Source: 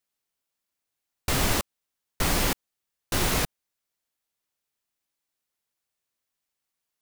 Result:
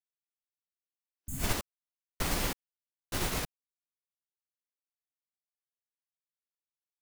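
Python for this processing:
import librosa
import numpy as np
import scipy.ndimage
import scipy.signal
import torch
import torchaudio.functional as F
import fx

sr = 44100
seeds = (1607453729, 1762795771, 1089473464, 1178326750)

y = fx.spec_repair(x, sr, seeds[0], start_s=1.13, length_s=0.3, low_hz=290.0, high_hz=6300.0, source='both')
y = fx.upward_expand(y, sr, threshold_db=-39.0, expansion=2.5)
y = F.gain(torch.from_numpy(y), -4.0).numpy()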